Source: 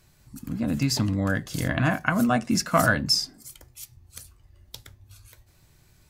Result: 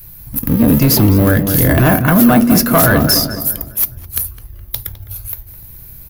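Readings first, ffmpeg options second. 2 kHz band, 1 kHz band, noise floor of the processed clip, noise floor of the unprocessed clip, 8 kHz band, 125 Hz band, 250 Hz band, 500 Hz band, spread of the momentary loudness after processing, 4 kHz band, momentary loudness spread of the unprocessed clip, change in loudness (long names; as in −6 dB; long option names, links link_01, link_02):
+7.5 dB, +9.5 dB, −36 dBFS, −59 dBFS, +13.0 dB, +14.0 dB, +14.5 dB, +13.5 dB, 16 LU, +7.5 dB, 21 LU, +12.5 dB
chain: -filter_complex "[0:a]lowshelf=frequency=110:gain=10.5,asplit=2[link_01][link_02];[link_02]acrusher=samples=35:mix=1:aa=0.000001:lfo=1:lforange=56:lforate=0.43,volume=-12dB[link_03];[link_01][link_03]amix=inputs=2:normalize=0,aexciter=amount=15.8:drive=5.3:freq=11000,acrossover=split=7300[link_04][link_05];[link_05]asoftclip=type=tanh:threshold=-15.5dB[link_06];[link_04][link_06]amix=inputs=2:normalize=0,asplit=2[link_07][link_08];[link_08]adelay=208,lowpass=frequency=2100:poles=1,volume=-11.5dB,asplit=2[link_09][link_10];[link_10]adelay=208,lowpass=frequency=2100:poles=1,volume=0.46,asplit=2[link_11][link_12];[link_12]adelay=208,lowpass=frequency=2100:poles=1,volume=0.46,asplit=2[link_13][link_14];[link_14]adelay=208,lowpass=frequency=2100:poles=1,volume=0.46,asplit=2[link_15][link_16];[link_16]adelay=208,lowpass=frequency=2100:poles=1,volume=0.46[link_17];[link_07][link_09][link_11][link_13][link_15][link_17]amix=inputs=6:normalize=0,apsyclip=18.5dB,adynamicequalizer=threshold=0.0708:dfrequency=390:dqfactor=0.85:tfrequency=390:tqfactor=0.85:attack=5:release=100:ratio=0.375:range=4:mode=boostabove:tftype=bell,volume=-8dB"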